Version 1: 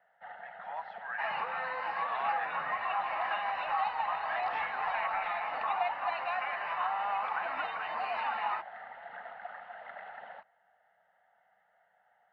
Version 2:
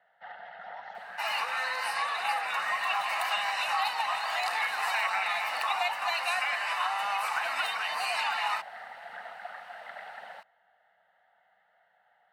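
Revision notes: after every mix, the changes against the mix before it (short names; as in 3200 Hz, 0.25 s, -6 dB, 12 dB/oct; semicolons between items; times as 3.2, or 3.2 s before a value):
speech -11.0 dB; second sound: add tilt +3.5 dB/oct; master: remove air absorption 390 m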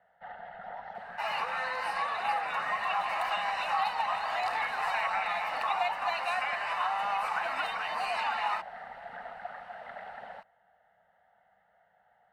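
master: add tilt -3.5 dB/oct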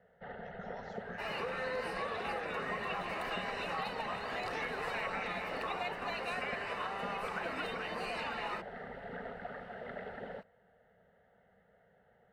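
speech: remove LPF 2400 Hz 12 dB/oct; second sound -5.0 dB; master: add resonant low shelf 570 Hz +10.5 dB, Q 3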